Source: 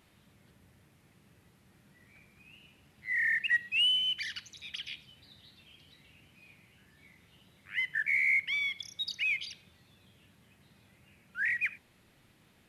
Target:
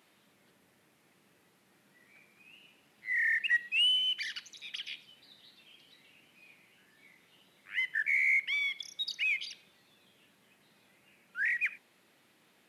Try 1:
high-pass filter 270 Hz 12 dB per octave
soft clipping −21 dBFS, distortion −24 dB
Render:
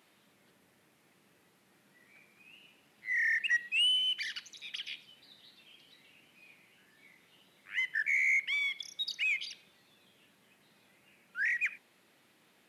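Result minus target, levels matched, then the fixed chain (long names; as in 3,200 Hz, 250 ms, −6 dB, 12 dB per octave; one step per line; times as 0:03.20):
soft clipping: distortion +14 dB
high-pass filter 270 Hz 12 dB per octave
soft clipping −13.5 dBFS, distortion −37 dB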